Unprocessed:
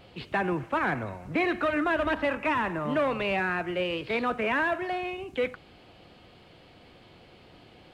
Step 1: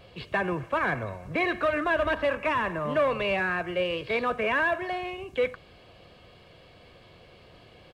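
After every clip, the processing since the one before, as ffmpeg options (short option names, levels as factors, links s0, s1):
-af "aecho=1:1:1.8:0.42"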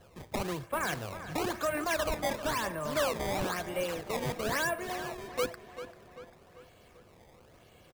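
-filter_complex "[0:a]acrusher=samples=18:mix=1:aa=0.000001:lfo=1:lforange=28.8:lforate=1,asplit=2[s0][s1];[s1]adelay=392,lowpass=f=3900:p=1,volume=0.266,asplit=2[s2][s3];[s3]adelay=392,lowpass=f=3900:p=1,volume=0.53,asplit=2[s4][s5];[s5]adelay=392,lowpass=f=3900:p=1,volume=0.53,asplit=2[s6][s7];[s7]adelay=392,lowpass=f=3900:p=1,volume=0.53,asplit=2[s8][s9];[s9]adelay=392,lowpass=f=3900:p=1,volume=0.53,asplit=2[s10][s11];[s11]adelay=392,lowpass=f=3900:p=1,volume=0.53[s12];[s0][s2][s4][s6][s8][s10][s12]amix=inputs=7:normalize=0,volume=0.501"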